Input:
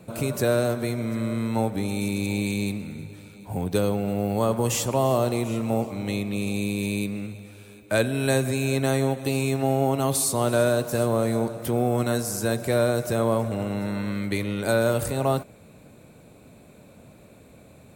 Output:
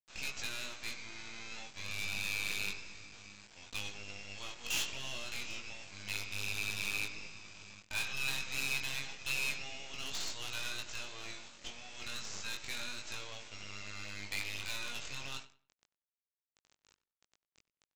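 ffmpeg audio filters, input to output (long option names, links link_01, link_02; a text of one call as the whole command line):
ffmpeg -i in.wav -filter_complex "[0:a]acrossover=split=5200[link_01][link_02];[link_02]alimiter=limit=-23.5dB:level=0:latency=1:release=284[link_03];[link_01][link_03]amix=inputs=2:normalize=0,highpass=frequency=2700:width_type=q:width=3.2,aresample=16000,acrusher=bits=5:dc=4:mix=0:aa=0.000001,aresample=44100,asplit=2[link_04][link_05];[link_05]adelay=94,lowpass=frequency=3600:poles=1,volume=-17dB,asplit=2[link_06][link_07];[link_07]adelay=94,lowpass=frequency=3600:poles=1,volume=0.27,asplit=2[link_08][link_09];[link_09]adelay=94,lowpass=frequency=3600:poles=1,volume=0.27[link_10];[link_04][link_06][link_08][link_10]amix=inputs=4:normalize=0,asoftclip=type=hard:threshold=-27.5dB,flanger=delay=19:depth=2.7:speed=0.29" out.wav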